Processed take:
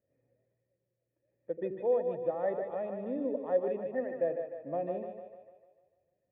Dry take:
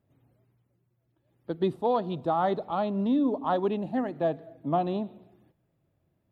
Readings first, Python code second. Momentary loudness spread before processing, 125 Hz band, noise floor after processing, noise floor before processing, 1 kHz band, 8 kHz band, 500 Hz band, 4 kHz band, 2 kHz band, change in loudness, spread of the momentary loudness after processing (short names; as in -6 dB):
9 LU, -14.0 dB, -84 dBFS, -75 dBFS, -12.5 dB, n/a, -1.5 dB, under -25 dB, -6.0 dB, -5.5 dB, 9 LU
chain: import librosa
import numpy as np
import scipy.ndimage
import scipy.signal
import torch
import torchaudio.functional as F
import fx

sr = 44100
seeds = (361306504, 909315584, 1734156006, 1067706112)

y = fx.formant_cascade(x, sr, vowel='e')
y = fx.echo_split(y, sr, split_hz=470.0, low_ms=82, high_ms=150, feedback_pct=52, wet_db=-6.0)
y = F.gain(torch.from_numpy(y), 4.0).numpy()